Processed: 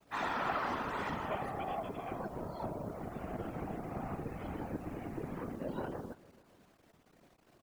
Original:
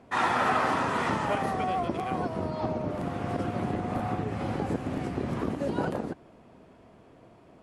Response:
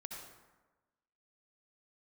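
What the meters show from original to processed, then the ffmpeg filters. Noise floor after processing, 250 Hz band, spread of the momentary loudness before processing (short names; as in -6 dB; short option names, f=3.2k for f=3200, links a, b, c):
-67 dBFS, -10.5 dB, 7 LU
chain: -filter_complex "[0:a]afftfilt=real='re*gte(hypot(re,im),0.00631)':imag='im*gte(hypot(re,im),0.00631)':win_size=1024:overlap=0.75,highshelf=f=7.9k:g=7,acrusher=bits=8:mix=0:aa=0.000001,afftfilt=real='hypot(re,im)*cos(2*PI*random(0))':imag='hypot(re,im)*sin(2*PI*random(1))':win_size=512:overlap=0.75,asplit=2[a][b];[b]aecho=0:1:296|592|888:0.0841|0.0353|0.0148[c];[a][c]amix=inputs=2:normalize=0,volume=-4dB"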